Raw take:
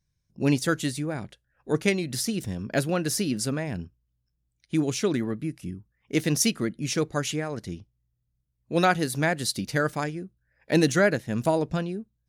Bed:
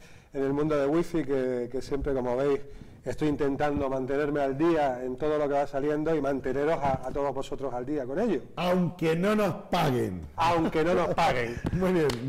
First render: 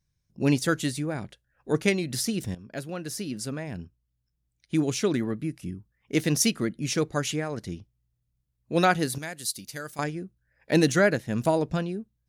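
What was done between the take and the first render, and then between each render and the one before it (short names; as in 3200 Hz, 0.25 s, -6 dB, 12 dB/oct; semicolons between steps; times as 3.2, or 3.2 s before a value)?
2.55–4.75 fade in, from -13 dB; 9.18–9.99 pre-emphasis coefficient 0.8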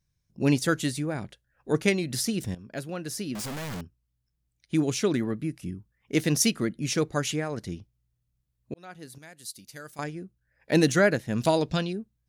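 3.35–3.81 infinite clipping; 8.74–10.84 fade in; 11.4–11.93 bell 4000 Hz +11 dB 1.4 oct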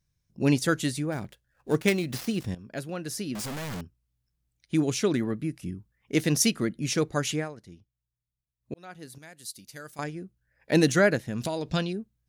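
1.12–2.48 switching dead time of 0.067 ms; 7.41–8.73 dip -13 dB, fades 0.13 s; 11.27–11.72 compressor, threshold -26 dBFS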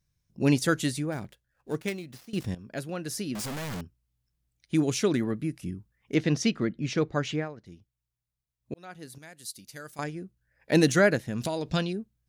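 0.88–2.33 fade out, to -20 dB; 6.14–7.66 air absorption 150 m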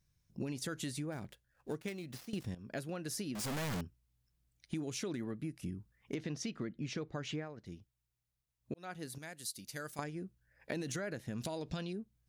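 limiter -17.5 dBFS, peak gain reduction 9.5 dB; compressor, threshold -37 dBFS, peak gain reduction 14 dB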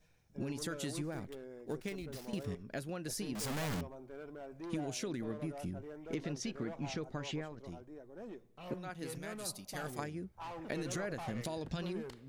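add bed -21 dB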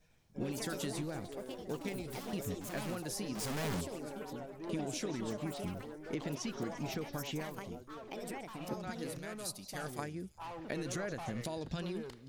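delay with a stepping band-pass 0.172 s, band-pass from 4400 Hz, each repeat 0.7 oct, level -12 dB; echoes that change speed 0.1 s, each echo +5 st, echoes 2, each echo -6 dB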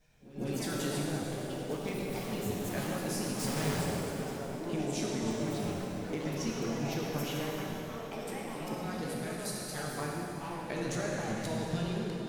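pre-echo 0.151 s -17 dB; plate-style reverb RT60 3.4 s, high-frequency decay 0.85×, DRR -3 dB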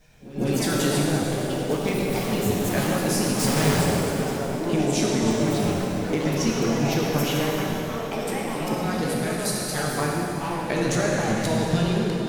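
gain +11.5 dB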